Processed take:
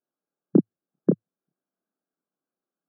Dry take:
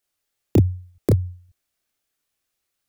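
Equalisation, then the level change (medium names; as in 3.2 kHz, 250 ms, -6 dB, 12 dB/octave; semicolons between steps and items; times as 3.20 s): tilt EQ -4.5 dB/octave; dynamic bell 1.1 kHz, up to -3 dB, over -36 dBFS, Q 0.85; brick-wall FIR band-pass 160–1700 Hz; -6.0 dB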